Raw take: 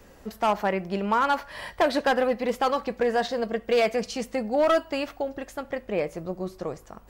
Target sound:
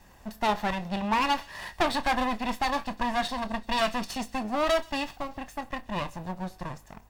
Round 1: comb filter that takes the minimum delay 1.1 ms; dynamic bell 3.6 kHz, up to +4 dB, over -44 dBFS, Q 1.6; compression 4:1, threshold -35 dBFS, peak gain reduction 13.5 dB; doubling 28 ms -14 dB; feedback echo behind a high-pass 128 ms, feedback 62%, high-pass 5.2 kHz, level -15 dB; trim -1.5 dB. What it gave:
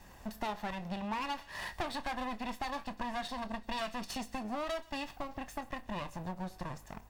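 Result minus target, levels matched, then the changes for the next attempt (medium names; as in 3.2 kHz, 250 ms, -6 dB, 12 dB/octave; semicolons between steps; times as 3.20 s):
compression: peak gain reduction +13.5 dB
remove: compression 4:1, threshold -35 dBFS, peak gain reduction 13.5 dB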